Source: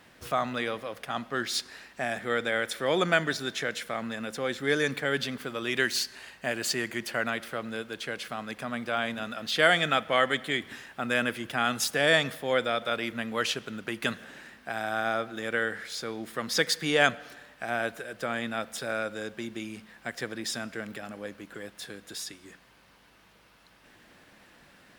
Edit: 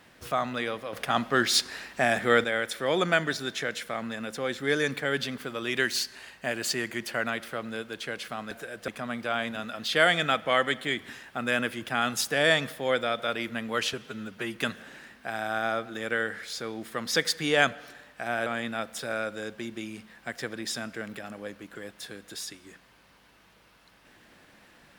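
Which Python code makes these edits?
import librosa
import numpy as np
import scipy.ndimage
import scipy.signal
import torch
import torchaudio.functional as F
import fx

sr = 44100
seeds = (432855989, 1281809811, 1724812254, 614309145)

y = fx.edit(x, sr, fx.clip_gain(start_s=0.93, length_s=1.51, db=7.0),
    fx.stretch_span(start_s=13.56, length_s=0.42, factor=1.5),
    fx.move(start_s=17.88, length_s=0.37, to_s=8.51), tone=tone)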